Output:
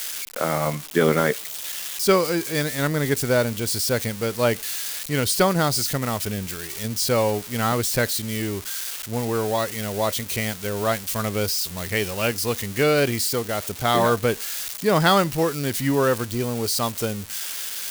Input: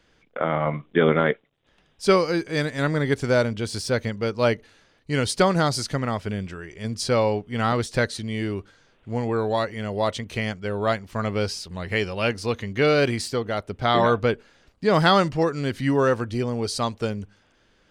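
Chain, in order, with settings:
spike at every zero crossing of −19.5 dBFS

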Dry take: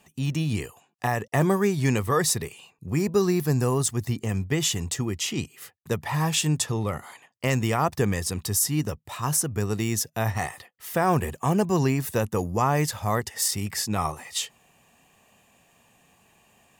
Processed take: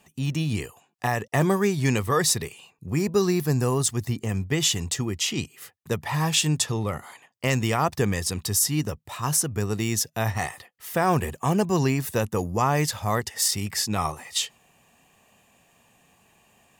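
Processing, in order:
dynamic equaliser 4,000 Hz, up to +4 dB, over −38 dBFS, Q 0.75

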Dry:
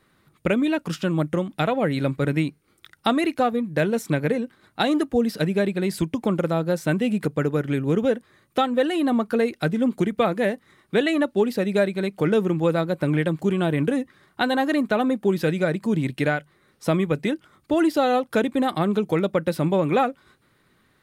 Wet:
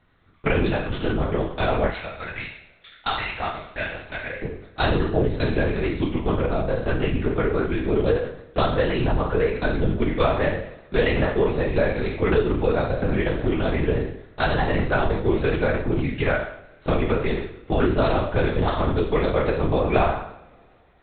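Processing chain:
peak hold with a decay on every bin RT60 0.68 s
0:01.89–0:04.43: high-pass filter 1,000 Hz 12 dB per octave
linear-prediction vocoder at 8 kHz whisper
coupled-rooms reverb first 0.37 s, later 3 s, from −22 dB, DRR 11 dB
level −1.5 dB

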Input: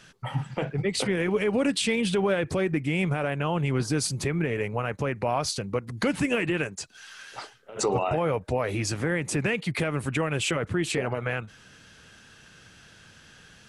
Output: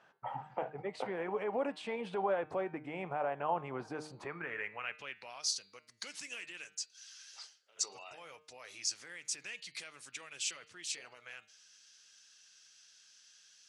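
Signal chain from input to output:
band-pass filter sweep 810 Hz → 5,700 Hz, 0:04.13–0:05.45
hum removal 153.3 Hz, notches 31

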